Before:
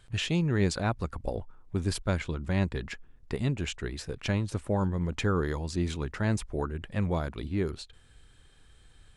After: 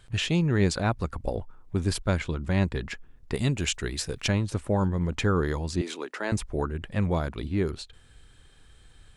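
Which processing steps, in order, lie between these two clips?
0:03.34–0:04.28: high-shelf EQ 3,700 Hz +10.5 dB
0:05.81–0:06.32: high-pass filter 310 Hz 24 dB per octave
level +3 dB

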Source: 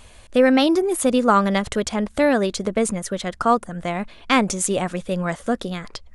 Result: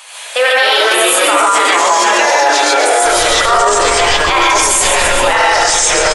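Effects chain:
Bessel high-pass filter 1,000 Hz, order 6
0:03.02–0:05.05: background noise brown −42 dBFS
delay with pitch and tempo change per echo 190 ms, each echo −3 semitones, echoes 3
repeating echo 133 ms, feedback 57%, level −9.5 dB
reverb whose tail is shaped and stops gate 180 ms rising, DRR −8 dB
boost into a limiter +16 dB
level −1 dB

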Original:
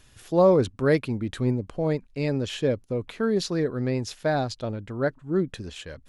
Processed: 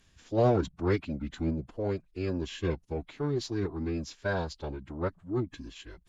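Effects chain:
phase-vocoder pitch shift with formants kept −7.5 semitones
harmonic generator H 8 −33 dB, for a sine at −8 dBFS
level −6 dB

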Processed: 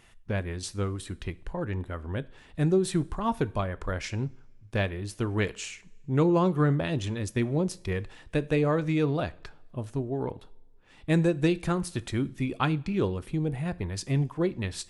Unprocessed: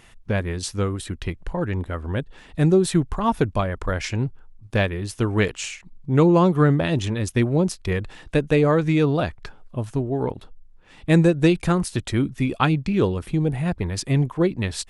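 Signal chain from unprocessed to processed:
coupled-rooms reverb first 0.41 s, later 1.5 s, from −17 dB, DRR 15.5 dB
level −7 dB

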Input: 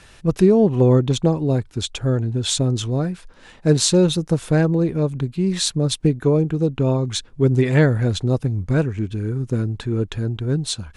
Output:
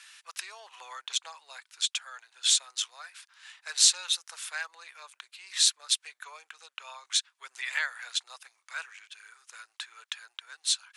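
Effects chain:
Bessel high-pass filter 1,800 Hz, order 6

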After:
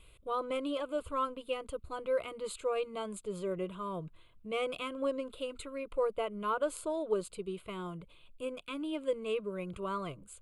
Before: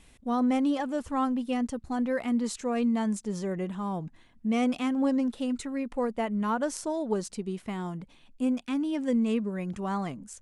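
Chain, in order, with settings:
phaser with its sweep stopped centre 1,200 Hz, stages 8

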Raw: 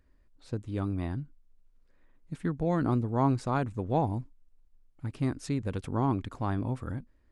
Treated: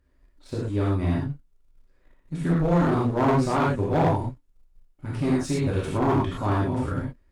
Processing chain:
reverb whose tail is shaped and stops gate 140 ms flat, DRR −7 dB
leveller curve on the samples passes 1
asymmetric clip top −17.5 dBFS
level −2 dB

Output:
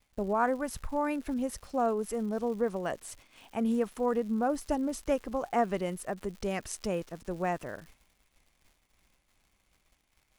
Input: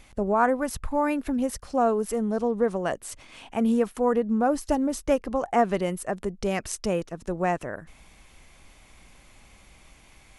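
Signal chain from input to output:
surface crackle 240 per second −37 dBFS
downward expander −41 dBFS
level −6 dB

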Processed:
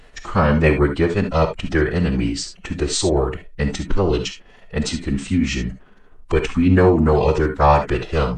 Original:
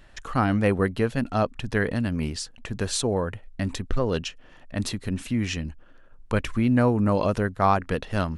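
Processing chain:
phase-vocoder pitch shift with formants kept −5 semitones
reverb whose tail is shaped and stops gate 90 ms rising, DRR 7 dB
level +6.5 dB

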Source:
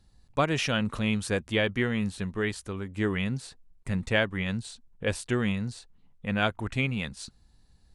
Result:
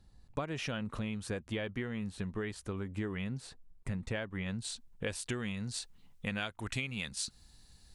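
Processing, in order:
high-shelf EQ 2,100 Hz −4.5 dB, from 0:04.62 +5.5 dB, from 0:05.74 +11.5 dB
downward compressor 12 to 1, threshold −33 dBFS, peak gain reduction 17 dB

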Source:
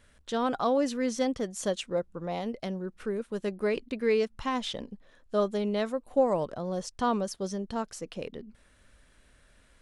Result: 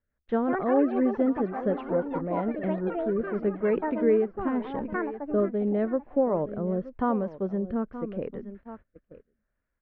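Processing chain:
delay with pitch and tempo change per echo 260 ms, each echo +7 semitones, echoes 3, each echo −6 dB
dynamic equaliser 280 Hz, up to +6 dB, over −39 dBFS, Q 0.79
on a send: single-tap delay 923 ms −15.5 dB
on the sum: noise gate −48 dBFS, range −24 dB
low-pass filter 1,900 Hz 24 dB per octave
in parallel at +1.5 dB: downward compressor, threshold −33 dBFS, peak gain reduction 16.5 dB
on the sum: rotating-speaker cabinet horn 5 Hz, later 0.85 Hz, at 0:02.04
level −1.5 dB

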